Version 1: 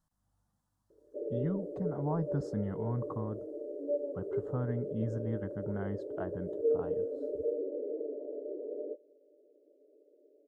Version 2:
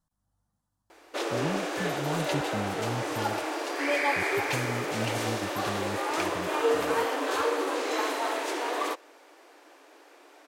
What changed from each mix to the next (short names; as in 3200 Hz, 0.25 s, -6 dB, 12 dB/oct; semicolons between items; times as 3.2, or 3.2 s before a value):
background: remove rippled Chebyshev low-pass 610 Hz, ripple 9 dB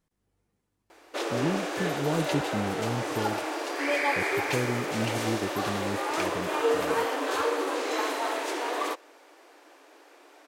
speech: remove fixed phaser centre 980 Hz, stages 4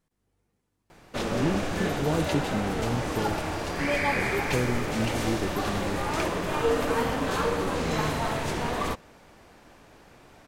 speech: send +9.5 dB; background: remove brick-wall FIR high-pass 270 Hz